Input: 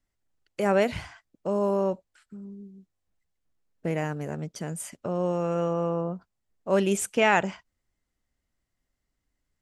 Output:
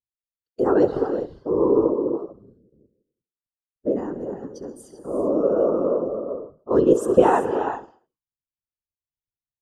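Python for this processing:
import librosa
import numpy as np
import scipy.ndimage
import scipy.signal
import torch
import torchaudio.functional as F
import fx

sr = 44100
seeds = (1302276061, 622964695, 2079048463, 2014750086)

y = fx.bin_expand(x, sr, power=1.5)
y = fx.lowpass(y, sr, hz=3300.0, slope=6)
y = fx.peak_eq(y, sr, hz=490.0, db=14.0, octaves=1.3)
y = fx.fixed_phaser(y, sr, hz=600.0, stages=6)
y = fx.rev_gated(y, sr, seeds[0], gate_ms=420, shape='rising', drr_db=7.5)
y = fx.level_steps(y, sr, step_db=12, at=(2.52, 3.86), fade=0.02)
y = scipy.signal.sosfilt(scipy.signal.butter(2, 58.0, 'highpass', fs=sr, output='sos'), y)
y = fx.echo_feedback(y, sr, ms=66, feedback_pct=46, wet_db=-17.5)
y = fx.whisperise(y, sr, seeds[1])
y = fx.low_shelf(y, sr, hz=170.0, db=4.5)
y = y * 10.0 ** (1.5 / 20.0)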